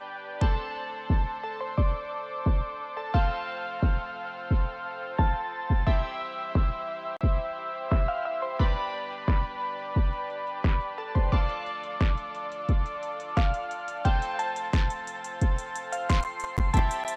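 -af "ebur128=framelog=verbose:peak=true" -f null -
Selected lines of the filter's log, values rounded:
Integrated loudness:
  I:         -29.0 LUFS
  Threshold: -39.0 LUFS
Loudness range:
  LRA:         1.1 LU
  Threshold: -49.1 LUFS
  LRA low:   -29.7 LUFS
  LRA high:  -28.5 LUFS
True peak:
  Peak:      -11.0 dBFS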